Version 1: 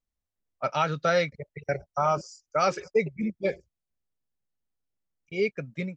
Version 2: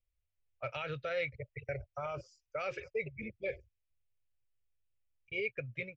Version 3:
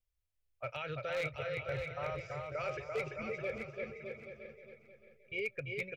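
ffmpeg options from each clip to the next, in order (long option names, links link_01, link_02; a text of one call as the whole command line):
ffmpeg -i in.wav -af "alimiter=limit=-21.5dB:level=0:latency=1:release=63,firequalizer=gain_entry='entry(120,0);entry(170,-23);entry(510,-7);entry(850,-18);entry(2500,-1);entry(4700,-19);entry(6900,-24)':delay=0.05:min_phase=1,volume=4dB" out.wav
ffmpeg -i in.wav -filter_complex "[0:a]asplit=2[link_01][link_02];[link_02]aecho=0:1:340|612|829.6|1004|1143:0.631|0.398|0.251|0.158|0.1[link_03];[link_01][link_03]amix=inputs=2:normalize=0,aeval=exprs='0.0447*(abs(mod(val(0)/0.0447+3,4)-2)-1)':channel_layout=same,asplit=2[link_04][link_05];[link_05]aecho=0:1:620|1240|1860:0.316|0.0791|0.0198[link_06];[link_04][link_06]amix=inputs=2:normalize=0,volume=-1.5dB" out.wav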